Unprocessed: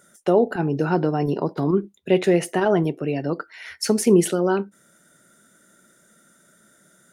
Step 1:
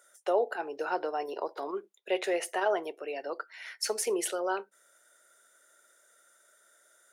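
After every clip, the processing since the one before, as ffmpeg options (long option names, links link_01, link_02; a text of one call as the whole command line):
ffmpeg -i in.wav -af "highpass=frequency=480:width=0.5412,highpass=frequency=480:width=1.3066,volume=-5.5dB" out.wav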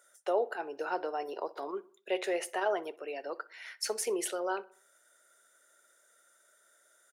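ffmpeg -i in.wav -filter_complex "[0:a]asplit=2[link_01][link_02];[link_02]adelay=62,lowpass=frequency=3100:poles=1,volume=-21.5dB,asplit=2[link_03][link_04];[link_04]adelay=62,lowpass=frequency=3100:poles=1,volume=0.52,asplit=2[link_05][link_06];[link_06]adelay=62,lowpass=frequency=3100:poles=1,volume=0.52,asplit=2[link_07][link_08];[link_08]adelay=62,lowpass=frequency=3100:poles=1,volume=0.52[link_09];[link_01][link_03][link_05][link_07][link_09]amix=inputs=5:normalize=0,volume=-2.5dB" out.wav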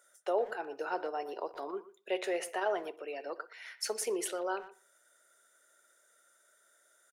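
ffmpeg -i in.wav -filter_complex "[0:a]asplit=2[link_01][link_02];[link_02]adelay=120,highpass=300,lowpass=3400,asoftclip=type=hard:threshold=-28dB,volume=-15dB[link_03];[link_01][link_03]amix=inputs=2:normalize=0,volume=-1.5dB" out.wav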